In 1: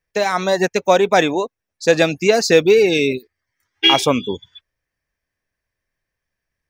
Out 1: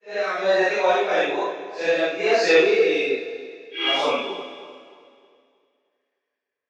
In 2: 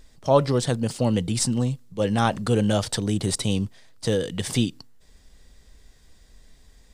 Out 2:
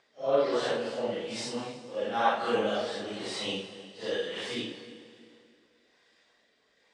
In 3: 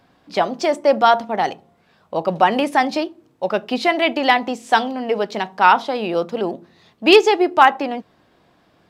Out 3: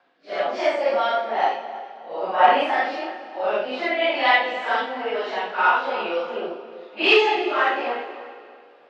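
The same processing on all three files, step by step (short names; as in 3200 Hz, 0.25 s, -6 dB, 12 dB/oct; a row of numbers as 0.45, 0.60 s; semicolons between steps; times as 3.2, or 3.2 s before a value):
phase scrambler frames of 0.2 s; in parallel at -11.5 dB: wavefolder -8.5 dBFS; on the sum: rotary speaker horn 1.1 Hz; BPF 570–3200 Hz; on a send: tape echo 0.311 s, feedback 44%, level -13 dB, low-pass 1100 Hz; on the sum: Schroeder reverb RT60 2.2 s, combs from 27 ms, DRR 10 dB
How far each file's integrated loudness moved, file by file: -5.0, -7.0, -4.0 LU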